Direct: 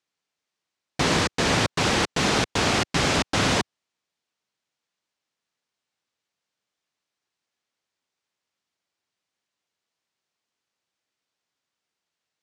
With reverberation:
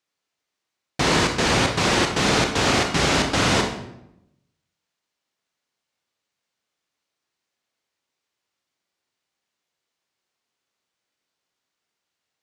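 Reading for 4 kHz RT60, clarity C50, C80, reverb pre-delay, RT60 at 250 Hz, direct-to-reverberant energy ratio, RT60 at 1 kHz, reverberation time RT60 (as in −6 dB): 0.60 s, 6.5 dB, 9.5 dB, 25 ms, 1.1 s, 3.0 dB, 0.75 s, 0.85 s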